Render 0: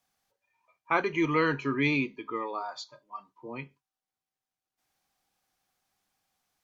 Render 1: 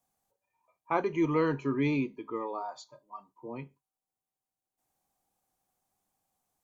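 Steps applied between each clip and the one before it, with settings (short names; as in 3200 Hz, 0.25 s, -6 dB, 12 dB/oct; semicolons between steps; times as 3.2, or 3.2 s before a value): band shelf 2700 Hz -9.5 dB 2.4 oct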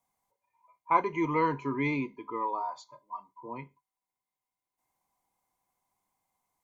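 small resonant body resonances 1000/2100 Hz, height 18 dB, ringing for 50 ms; gain -2.5 dB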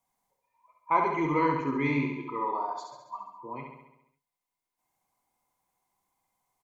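flange 1.3 Hz, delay 0.6 ms, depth 7.9 ms, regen +74%; on a send: feedback echo 68 ms, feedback 59%, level -4.5 dB; on the sum: gain +4.5 dB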